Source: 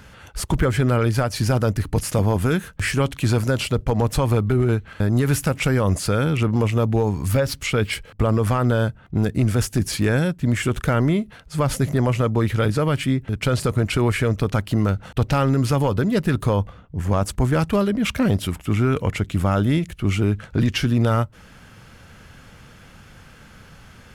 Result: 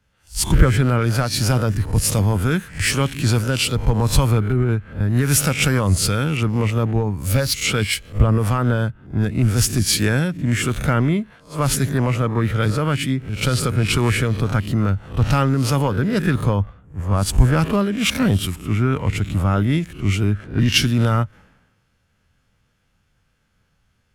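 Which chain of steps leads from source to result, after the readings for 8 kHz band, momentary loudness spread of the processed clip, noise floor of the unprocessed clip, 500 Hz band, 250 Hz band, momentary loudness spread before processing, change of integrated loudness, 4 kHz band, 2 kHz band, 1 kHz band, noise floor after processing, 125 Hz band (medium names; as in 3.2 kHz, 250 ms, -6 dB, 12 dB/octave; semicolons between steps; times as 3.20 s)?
+8.0 dB, 5 LU, -47 dBFS, -2.0 dB, +0.5 dB, 4 LU, +2.0 dB, +6.5 dB, +3.0 dB, +1.0 dB, -65 dBFS, +2.0 dB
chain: reverse spectral sustain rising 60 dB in 0.39 s; dynamic bell 550 Hz, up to -6 dB, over -31 dBFS, Q 0.73; three bands expanded up and down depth 100%; trim +2.5 dB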